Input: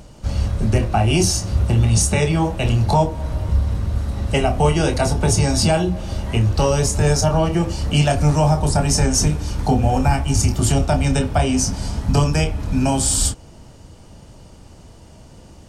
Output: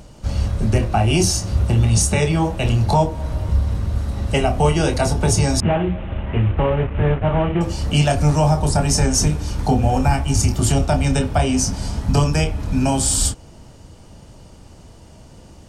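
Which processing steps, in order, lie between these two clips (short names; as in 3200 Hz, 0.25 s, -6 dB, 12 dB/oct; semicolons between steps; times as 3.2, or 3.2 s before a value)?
5.6–7.61 CVSD 16 kbps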